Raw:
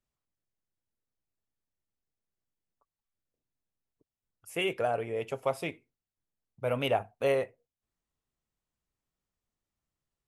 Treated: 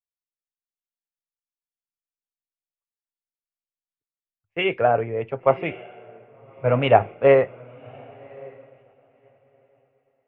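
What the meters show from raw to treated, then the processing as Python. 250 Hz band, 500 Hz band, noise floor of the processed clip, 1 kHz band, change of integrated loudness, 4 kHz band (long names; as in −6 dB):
+9.5 dB, +11.5 dB, below −85 dBFS, +12.5 dB, +11.0 dB, +4.5 dB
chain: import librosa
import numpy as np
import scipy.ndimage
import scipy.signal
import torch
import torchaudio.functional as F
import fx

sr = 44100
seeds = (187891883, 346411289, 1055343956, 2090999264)

y = scipy.signal.sosfilt(scipy.signal.butter(4, 2300.0, 'lowpass', fs=sr, output='sos'), x)
y = fx.echo_diffused(y, sr, ms=1120, feedback_pct=40, wet_db=-11)
y = fx.band_widen(y, sr, depth_pct=100)
y = F.gain(torch.from_numpy(y), 7.5).numpy()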